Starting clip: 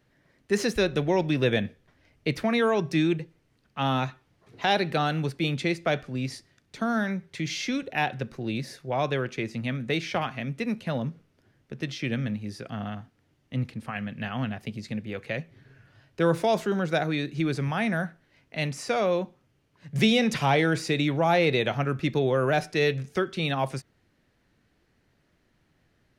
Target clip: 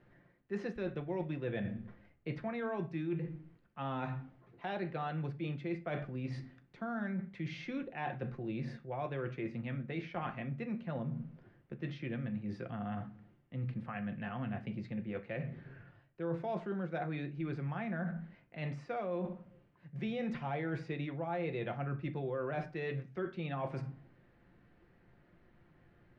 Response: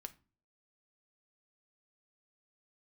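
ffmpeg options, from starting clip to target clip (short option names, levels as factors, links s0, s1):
-filter_complex "[1:a]atrim=start_sample=2205,asetrate=37044,aresample=44100[s0];[0:a][s0]afir=irnorm=-1:irlink=0,areverse,acompressor=threshold=0.00562:ratio=4,areverse,lowpass=2000,volume=2.24"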